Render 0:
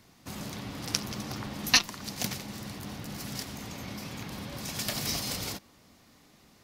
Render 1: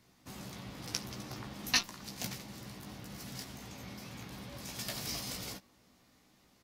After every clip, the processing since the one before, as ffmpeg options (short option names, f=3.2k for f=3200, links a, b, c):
-filter_complex "[0:a]asplit=2[a][b];[b]adelay=16,volume=-5.5dB[c];[a][c]amix=inputs=2:normalize=0,volume=-8dB"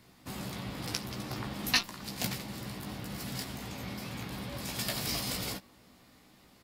-filter_complex "[0:a]equalizer=f=6.1k:t=o:w=0.31:g=-6.5,asplit=2[a][b];[b]alimiter=limit=-22.5dB:level=0:latency=1:release=496,volume=1.5dB[c];[a][c]amix=inputs=2:normalize=0"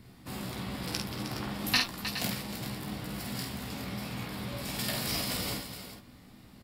-filter_complex "[0:a]equalizer=f=6.3k:t=o:w=0.22:g=-6.5,acrossover=split=260[a][b];[a]acompressor=mode=upward:threshold=-47dB:ratio=2.5[c];[c][b]amix=inputs=2:normalize=0,aecho=1:1:49|311|417:0.631|0.316|0.282"